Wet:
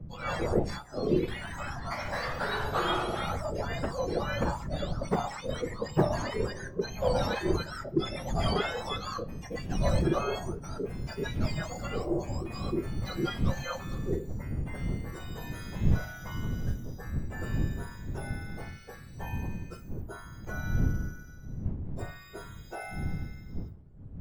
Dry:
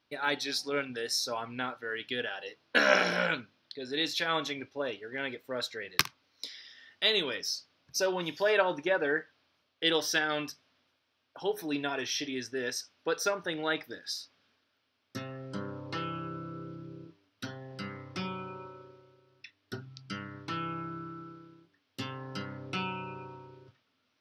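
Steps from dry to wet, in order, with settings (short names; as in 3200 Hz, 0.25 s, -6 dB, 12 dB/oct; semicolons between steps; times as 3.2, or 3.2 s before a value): spectrum mirrored in octaves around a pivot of 1400 Hz; wind noise 140 Hz -40 dBFS; in parallel at -9 dB: soft clip -25 dBFS, distortion -11 dB; on the sum: low shelf 490 Hz +4.5 dB; on a send at -18 dB: reverb RT60 0.70 s, pre-delay 5 ms; on the sum: echoes that change speed 93 ms, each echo +3 st, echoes 3; tone controls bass +3 dB, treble -8 dB; 0.7–1.28 upward expander 1.5:1, over -35 dBFS; gain -6 dB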